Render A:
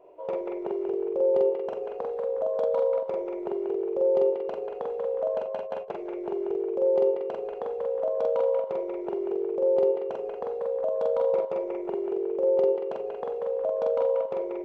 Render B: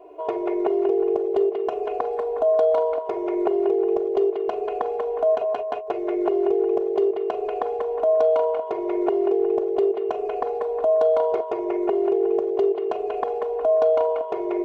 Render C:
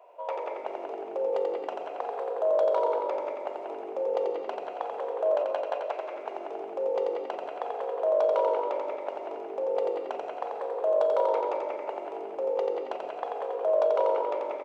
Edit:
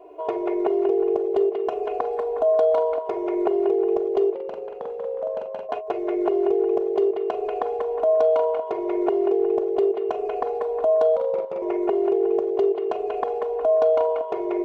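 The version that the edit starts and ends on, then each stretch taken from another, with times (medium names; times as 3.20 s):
B
4.35–5.69 s: from A
11.16–11.62 s: from A
not used: C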